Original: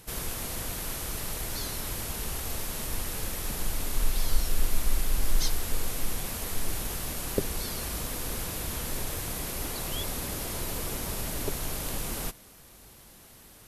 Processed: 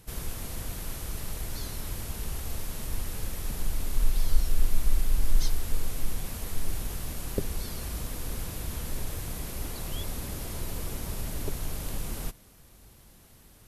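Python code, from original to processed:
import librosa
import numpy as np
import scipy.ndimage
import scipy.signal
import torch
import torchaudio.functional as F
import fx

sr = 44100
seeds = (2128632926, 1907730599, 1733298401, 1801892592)

y = fx.low_shelf(x, sr, hz=200.0, db=8.5)
y = F.gain(torch.from_numpy(y), -5.5).numpy()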